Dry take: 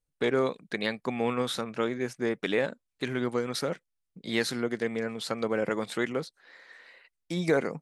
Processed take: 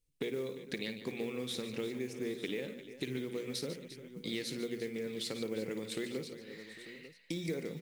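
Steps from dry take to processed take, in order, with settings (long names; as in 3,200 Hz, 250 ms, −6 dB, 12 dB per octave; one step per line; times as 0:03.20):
flat-topped bell 1,000 Hz −13.5 dB
mains-hum notches 60/120/180/240 Hz
downward compressor 6 to 1, threshold −39 dBFS, peak gain reduction 17 dB
on a send: multi-tap delay 55/146/350/801/894 ms −12.5/−12/−14/−18/−15 dB
on the sum: noise that follows the level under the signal 25 dB
level +3 dB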